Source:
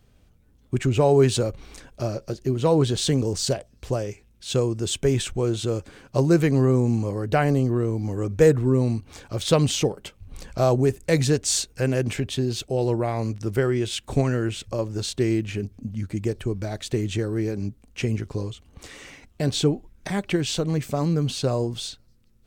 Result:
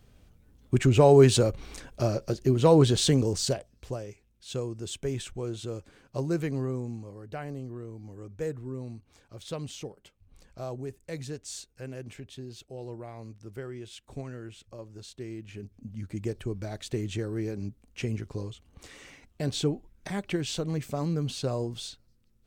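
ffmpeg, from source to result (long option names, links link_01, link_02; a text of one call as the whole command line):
ffmpeg -i in.wav -af "volume=11dB,afade=type=out:start_time=2.87:duration=1.13:silence=0.281838,afade=type=out:start_time=6.48:duration=0.58:silence=0.473151,afade=type=in:start_time=15.36:duration=0.87:silence=0.298538" out.wav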